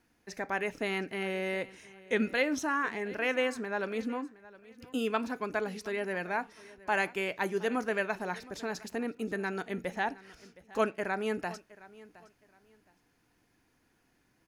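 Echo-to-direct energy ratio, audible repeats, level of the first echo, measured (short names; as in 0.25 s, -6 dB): -19.5 dB, 2, -20.0 dB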